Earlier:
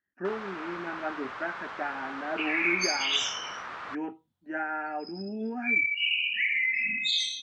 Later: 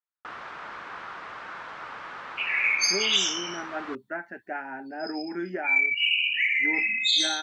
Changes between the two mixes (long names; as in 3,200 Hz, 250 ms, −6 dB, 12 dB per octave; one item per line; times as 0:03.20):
speech: entry +2.70 s
second sound: add spectral tilt +2.5 dB per octave